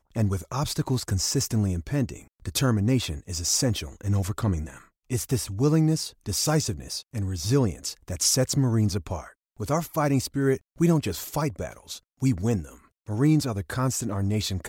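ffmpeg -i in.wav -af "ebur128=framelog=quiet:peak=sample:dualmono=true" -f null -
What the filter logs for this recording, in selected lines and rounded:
Integrated loudness:
  I:         -22.9 LUFS
  Threshold: -33.3 LUFS
Loudness range:
  LRA:         2.0 LU
  Threshold: -43.2 LUFS
  LRA low:   -24.1 LUFS
  LRA high:  -22.2 LUFS
Sample peak:
  Peak:      -10.1 dBFS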